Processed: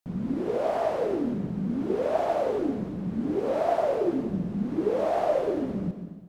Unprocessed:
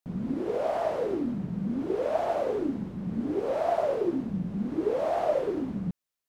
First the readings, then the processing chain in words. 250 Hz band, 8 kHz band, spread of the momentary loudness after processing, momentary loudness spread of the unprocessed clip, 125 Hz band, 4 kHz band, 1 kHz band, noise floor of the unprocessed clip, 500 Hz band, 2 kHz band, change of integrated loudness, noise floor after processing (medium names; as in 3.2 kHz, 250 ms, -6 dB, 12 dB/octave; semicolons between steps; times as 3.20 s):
+2.0 dB, no reading, 6 LU, 6 LU, +2.0 dB, +2.0 dB, +2.0 dB, under -85 dBFS, +2.0 dB, +2.0 dB, +2.0 dB, -40 dBFS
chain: plate-style reverb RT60 1.3 s, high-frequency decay 0.95×, pre-delay 105 ms, DRR 9.5 dB; trim +1.5 dB